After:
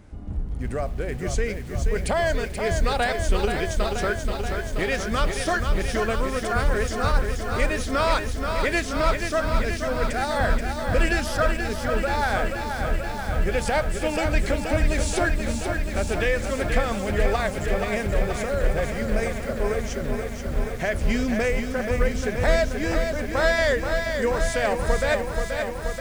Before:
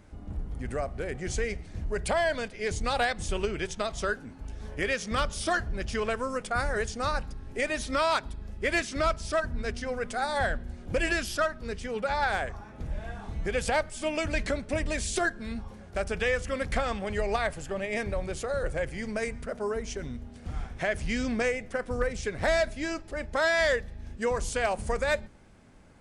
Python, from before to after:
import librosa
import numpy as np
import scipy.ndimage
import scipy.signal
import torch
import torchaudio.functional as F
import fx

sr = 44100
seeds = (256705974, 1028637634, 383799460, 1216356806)

y = fx.low_shelf(x, sr, hz=360.0, db=4.5)
y = fx.echo_crushed(y, sr, ms=480, feedback_pct=80, bits=8, wet_db=-6)
y = y * 10.0 ** (2.0 / 20.0)